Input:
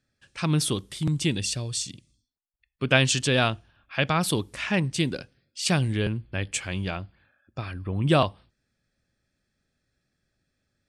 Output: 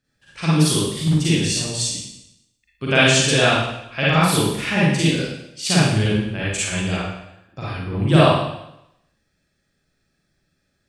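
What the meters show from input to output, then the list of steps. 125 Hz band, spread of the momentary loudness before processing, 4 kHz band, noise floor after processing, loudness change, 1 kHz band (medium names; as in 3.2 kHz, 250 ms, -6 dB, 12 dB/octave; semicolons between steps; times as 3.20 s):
+7.0 dB, 14 LU, +7.5 dB, -71 dBFS, +7.0 dB, +7.5 dB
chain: Schroeder reverb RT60 0.82 s, DRR -8.5 dB; trim -1.5 dB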